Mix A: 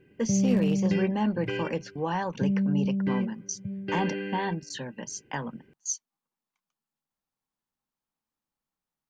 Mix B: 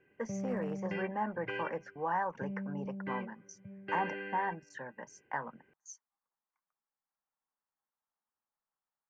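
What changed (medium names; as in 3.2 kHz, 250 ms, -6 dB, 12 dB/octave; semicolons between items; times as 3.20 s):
speech: add high-order bell 3.3 kHz -13 dB 1.1 oct; master: add three-band isolator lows -15 dB, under 570 Hz, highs -20 dB, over 2.4 kHz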